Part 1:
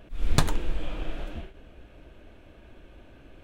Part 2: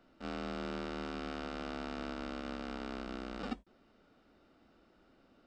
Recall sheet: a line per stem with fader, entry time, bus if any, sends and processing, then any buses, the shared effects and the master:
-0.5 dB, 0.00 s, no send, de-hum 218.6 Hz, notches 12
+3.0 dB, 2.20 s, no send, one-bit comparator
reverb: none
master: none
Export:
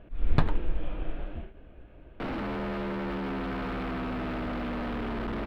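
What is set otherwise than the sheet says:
stem 2 +3.0 dB -> +12.0 dB; master: extra distance through air 430 m

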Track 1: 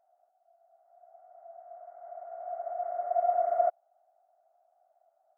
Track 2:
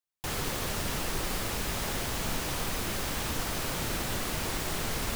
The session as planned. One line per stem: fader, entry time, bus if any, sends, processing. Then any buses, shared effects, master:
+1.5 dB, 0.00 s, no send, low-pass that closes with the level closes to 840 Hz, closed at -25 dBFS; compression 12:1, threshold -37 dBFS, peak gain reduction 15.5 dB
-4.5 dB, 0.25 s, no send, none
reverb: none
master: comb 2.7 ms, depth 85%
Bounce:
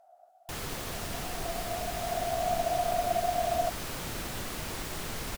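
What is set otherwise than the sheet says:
stem 1 +1.5 dB -> +11.0 dB; master: missing comb 2.7 ms, depth 85%

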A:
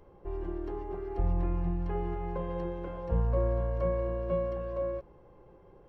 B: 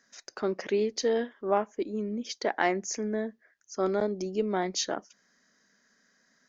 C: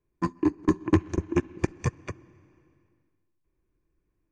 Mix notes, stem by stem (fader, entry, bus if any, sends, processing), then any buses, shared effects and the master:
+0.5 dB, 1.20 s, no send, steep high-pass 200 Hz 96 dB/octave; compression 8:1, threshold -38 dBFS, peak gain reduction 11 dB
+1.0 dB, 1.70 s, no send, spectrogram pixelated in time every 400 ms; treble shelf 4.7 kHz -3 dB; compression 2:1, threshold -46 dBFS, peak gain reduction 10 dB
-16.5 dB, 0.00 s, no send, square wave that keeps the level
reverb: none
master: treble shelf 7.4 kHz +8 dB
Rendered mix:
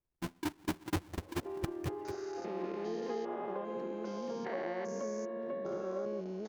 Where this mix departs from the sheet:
stem B: entry 1.70 s -> 2.05 s; master: missing treble shelf 7.4 kHz +8 dB

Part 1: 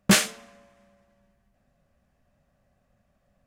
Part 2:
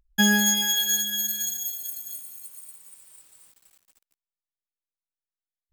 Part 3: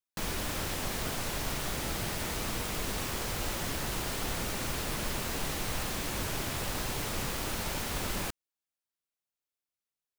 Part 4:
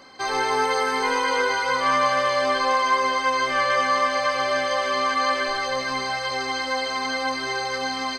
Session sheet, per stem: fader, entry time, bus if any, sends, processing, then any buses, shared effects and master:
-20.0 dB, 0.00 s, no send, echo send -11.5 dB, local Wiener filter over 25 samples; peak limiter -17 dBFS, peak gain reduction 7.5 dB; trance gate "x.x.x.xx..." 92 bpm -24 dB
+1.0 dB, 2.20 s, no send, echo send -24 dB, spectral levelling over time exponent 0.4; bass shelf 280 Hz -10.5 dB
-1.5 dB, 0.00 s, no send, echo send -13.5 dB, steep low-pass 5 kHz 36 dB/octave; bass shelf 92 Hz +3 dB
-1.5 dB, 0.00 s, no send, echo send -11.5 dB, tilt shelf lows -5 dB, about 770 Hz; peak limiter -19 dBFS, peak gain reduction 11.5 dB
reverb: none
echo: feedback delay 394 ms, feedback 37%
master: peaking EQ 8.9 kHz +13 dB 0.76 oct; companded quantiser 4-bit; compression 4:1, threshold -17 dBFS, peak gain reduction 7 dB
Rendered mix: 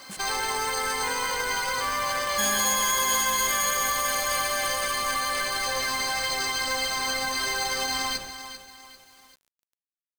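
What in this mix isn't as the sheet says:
stem 2 +1.0 dB -> -11.0 dB; stem 3 -1.5 dB -> -12.5 dB

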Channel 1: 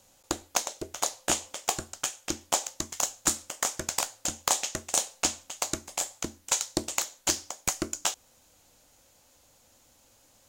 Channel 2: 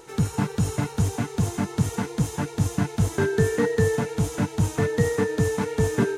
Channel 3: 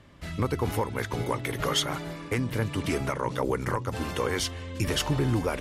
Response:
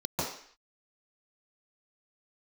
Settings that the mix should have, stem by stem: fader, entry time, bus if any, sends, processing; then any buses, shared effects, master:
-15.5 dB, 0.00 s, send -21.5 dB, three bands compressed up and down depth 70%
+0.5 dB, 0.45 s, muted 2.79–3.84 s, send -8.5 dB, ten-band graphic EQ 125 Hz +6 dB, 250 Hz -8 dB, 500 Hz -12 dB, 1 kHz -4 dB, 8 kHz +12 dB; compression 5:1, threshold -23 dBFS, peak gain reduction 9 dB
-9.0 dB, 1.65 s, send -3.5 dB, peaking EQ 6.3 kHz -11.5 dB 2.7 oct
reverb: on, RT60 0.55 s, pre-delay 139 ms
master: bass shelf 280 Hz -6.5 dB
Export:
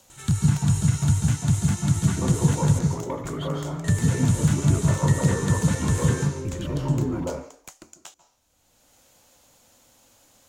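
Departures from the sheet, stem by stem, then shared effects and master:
stem 2: entry 0.45 s -> 0.10 s; master: missing bass shelf 280 Hz -6.5 dB

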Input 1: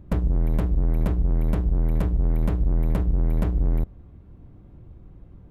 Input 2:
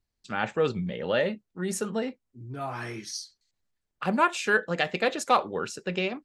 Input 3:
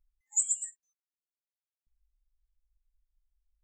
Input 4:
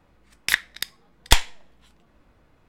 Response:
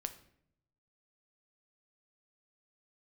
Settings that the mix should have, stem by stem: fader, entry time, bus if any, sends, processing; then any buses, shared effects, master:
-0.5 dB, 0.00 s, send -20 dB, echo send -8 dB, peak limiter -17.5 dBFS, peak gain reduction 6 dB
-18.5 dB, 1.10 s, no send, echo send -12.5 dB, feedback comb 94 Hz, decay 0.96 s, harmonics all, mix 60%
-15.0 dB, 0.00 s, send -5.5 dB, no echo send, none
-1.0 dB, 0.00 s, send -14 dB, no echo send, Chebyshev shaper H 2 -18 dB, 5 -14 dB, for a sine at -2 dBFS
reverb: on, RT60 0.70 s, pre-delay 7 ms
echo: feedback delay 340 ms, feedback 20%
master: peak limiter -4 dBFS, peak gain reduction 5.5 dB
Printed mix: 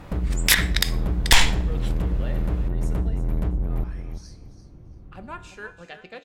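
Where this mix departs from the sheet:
stem 2 -18.5 dB -> -8.0 dB; stem 4 -1.0 dB -> +9.5 dB

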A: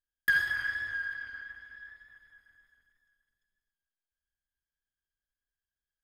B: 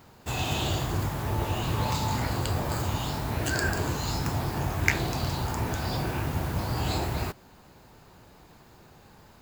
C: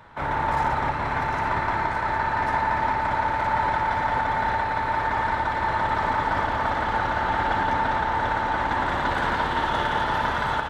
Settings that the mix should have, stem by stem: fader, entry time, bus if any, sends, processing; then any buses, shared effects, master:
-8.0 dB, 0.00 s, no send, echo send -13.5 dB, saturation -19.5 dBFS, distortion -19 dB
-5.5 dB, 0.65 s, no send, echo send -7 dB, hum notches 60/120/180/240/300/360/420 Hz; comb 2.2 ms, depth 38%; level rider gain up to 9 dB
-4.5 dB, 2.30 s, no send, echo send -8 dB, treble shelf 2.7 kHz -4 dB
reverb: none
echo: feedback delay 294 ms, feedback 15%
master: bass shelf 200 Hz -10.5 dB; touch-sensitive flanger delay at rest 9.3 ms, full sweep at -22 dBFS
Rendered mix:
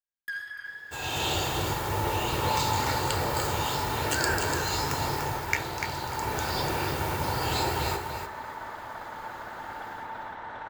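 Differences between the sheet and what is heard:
stem C -4.5 dB -> -14.0 dB; master: missing touch-sensitive flanger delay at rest 9.3 ms, full sweep at -22 dBFS

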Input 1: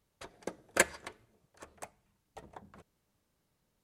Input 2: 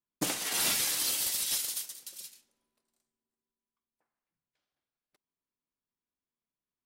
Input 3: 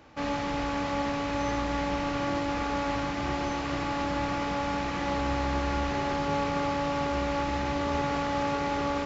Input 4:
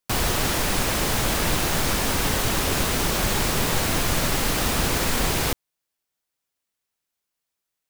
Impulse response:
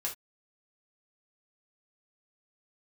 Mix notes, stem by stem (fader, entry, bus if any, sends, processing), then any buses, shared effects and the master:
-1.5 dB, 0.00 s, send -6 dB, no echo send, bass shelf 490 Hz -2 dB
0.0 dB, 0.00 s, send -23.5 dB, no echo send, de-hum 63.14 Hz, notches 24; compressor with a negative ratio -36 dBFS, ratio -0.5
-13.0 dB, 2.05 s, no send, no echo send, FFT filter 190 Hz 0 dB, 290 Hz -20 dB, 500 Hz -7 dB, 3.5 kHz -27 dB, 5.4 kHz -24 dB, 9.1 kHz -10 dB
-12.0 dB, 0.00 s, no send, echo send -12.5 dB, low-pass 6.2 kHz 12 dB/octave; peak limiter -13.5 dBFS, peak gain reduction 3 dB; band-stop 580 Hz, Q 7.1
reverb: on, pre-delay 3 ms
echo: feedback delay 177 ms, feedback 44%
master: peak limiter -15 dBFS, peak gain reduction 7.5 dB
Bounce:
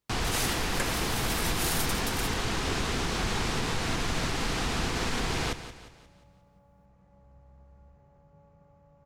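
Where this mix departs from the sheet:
stem 1 -1.5 dB -> -11.5 dB; stem 3 -13.0 dB -> -22.5 dB; stem 4 -12.0 dB -> -5.5 dB

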